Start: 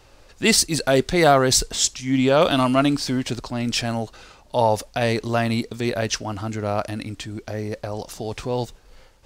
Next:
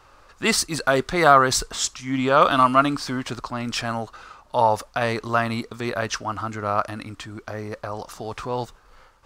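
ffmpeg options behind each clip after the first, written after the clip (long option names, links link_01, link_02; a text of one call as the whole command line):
ffmpeg -i in.wav -af "equalizer=frequency=1200:width=1.5:gain=14.5,volume=-5dB" out.wav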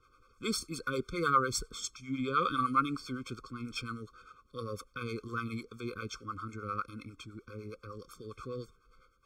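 ffmpeg -i in.wav -filter_complex "[0:a]acrossover=split=450[link_01][link_02];[link_01]aeval=exprs='val(0)*(1-0.7/2+0.7/2*cos(2*PI*9.9*n/s))':channel_layout=same[link_03];[link_02]aeval=exprs='val(0)*(1-0.7/2-0.7/2*cos(2*PI*9.9*n/s))':channel_layout=same[link_04];[link_03][link_04]amix=inputs=2:normalize=0,afftfilt=real='re*eq(mod(floor(b*sr/1024/520),2),0)':imag='im*eq(mod(floor(b*sr/1024/520),2),0)':win_size=1024:overlap=0.75,volume=-8dB" out.wav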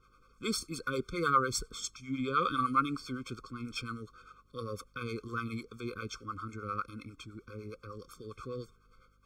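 ffmpeg -i in.wav -af "aeval=exprs='val(0)+0.000355*(sin(2*PI*50*n/s)+sin(2*PI*2*50*n/s)/2+sin(2*PI*3*50*n/s)/3+sin(2*PI*4*50*n/s)/4+sin(2*PI*5*50*n/s)/5)':channel_layout=same" out.wav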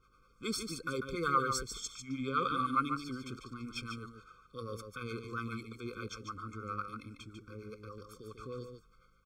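ffmpeg -i in.wav -af "aecho=1:1:146:0.447,volume=-3dB" out.wav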